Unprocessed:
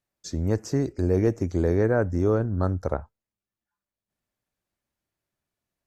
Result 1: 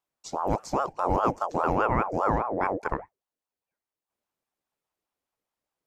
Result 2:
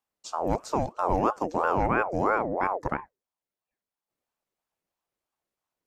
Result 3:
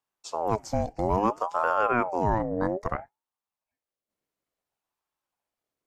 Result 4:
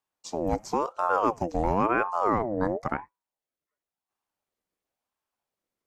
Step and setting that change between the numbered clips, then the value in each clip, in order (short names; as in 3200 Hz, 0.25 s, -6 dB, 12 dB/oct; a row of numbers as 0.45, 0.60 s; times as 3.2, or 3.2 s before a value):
ring modulator with a swept carrier, at: 4.9, 3, 0.59, 0.96 Hz